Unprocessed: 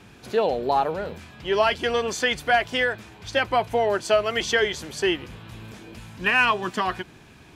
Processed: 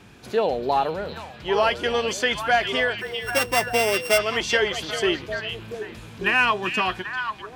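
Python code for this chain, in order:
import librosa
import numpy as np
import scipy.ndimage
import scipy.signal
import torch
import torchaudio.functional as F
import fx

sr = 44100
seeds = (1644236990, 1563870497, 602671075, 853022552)

y = fx.sample_sort(x, sr, block=16, at=(3.0, 4.17), fade=0.02)
y = fx.echo_stepped(y, sr, ms=394, hz=3300.0, octaves=-1.4, feedback_pct=70, wet_db=-3)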